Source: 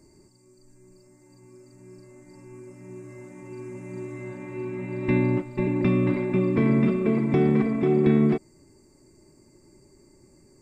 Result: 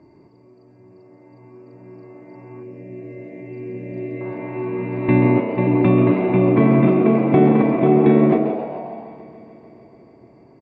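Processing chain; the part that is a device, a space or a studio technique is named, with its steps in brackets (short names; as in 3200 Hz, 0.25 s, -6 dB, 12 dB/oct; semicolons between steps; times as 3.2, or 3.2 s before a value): frequency-shifting delay pedal into a guitar cabinet (frequency-shifting echo 0.133 s, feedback 56%, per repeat +93 Hz, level -11.5 dB; speaker cabinet 83–3500 Hz, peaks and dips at 120 Hz +4 dB, 300 Hz +5 dB, 690 Hz +9 dB, 990 Hz +7 dB); 2.63–4.21 band shelf 1100 Hz -16 dB 1.1 oct; outdoor echo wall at 30 m, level -11 dB; multi-head echo 0.146 s, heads first and third, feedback 63%, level -21 dB; gain +4 dB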